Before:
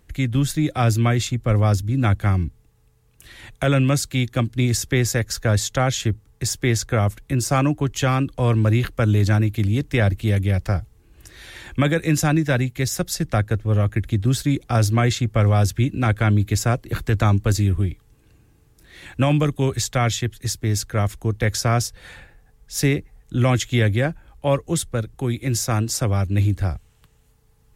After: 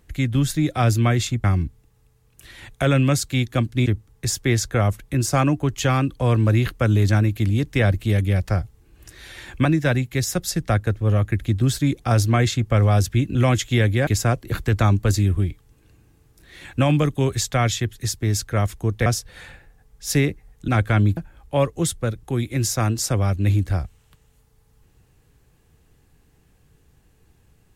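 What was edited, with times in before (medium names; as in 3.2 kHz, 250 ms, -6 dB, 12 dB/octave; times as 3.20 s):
1.44–2.25 s: delete
4.67–6.04 s: delete
11.83–12.29 s: delete
15.99–16.48 s: swap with 23.36–24.08 s
21.47–21.74 s: delete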